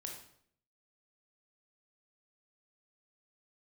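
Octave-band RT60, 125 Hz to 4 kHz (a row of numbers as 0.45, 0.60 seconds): 0.80, 0.75, 0.65, 0.60, 0.55, 0.55 seconds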